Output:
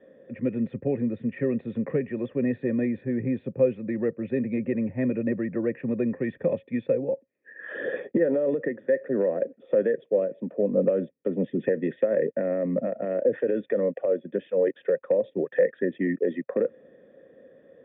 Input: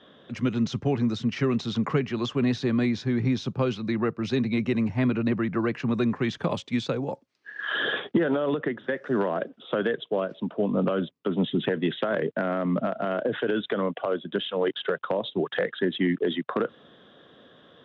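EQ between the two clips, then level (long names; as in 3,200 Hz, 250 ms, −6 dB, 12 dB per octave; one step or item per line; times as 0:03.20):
formant resonators in series e
low-shelf EQ 110 Hz +9 dB
parametric band 250 Hz +9.5 dB 1.7 octaves
+5.5 dB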